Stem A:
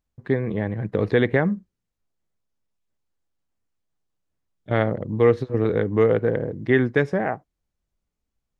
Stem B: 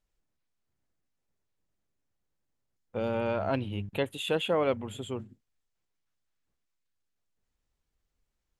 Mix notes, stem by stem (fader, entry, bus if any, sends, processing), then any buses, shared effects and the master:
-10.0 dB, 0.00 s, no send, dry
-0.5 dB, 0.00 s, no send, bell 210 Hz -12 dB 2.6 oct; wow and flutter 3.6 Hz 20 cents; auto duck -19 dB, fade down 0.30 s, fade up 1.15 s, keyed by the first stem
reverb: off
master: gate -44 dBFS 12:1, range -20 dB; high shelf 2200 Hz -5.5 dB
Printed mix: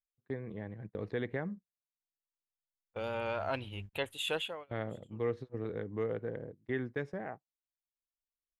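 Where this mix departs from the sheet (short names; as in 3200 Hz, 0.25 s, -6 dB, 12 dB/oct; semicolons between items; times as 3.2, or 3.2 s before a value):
stem A -10.0 dB -> -17.0 dB; master: missing high shelf 2200 Hz -5.5 dB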